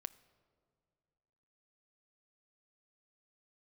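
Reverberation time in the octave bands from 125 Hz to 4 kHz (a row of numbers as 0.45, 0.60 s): 2.5, 2.4, 2.3, 2.1, 1.6, 1.1 s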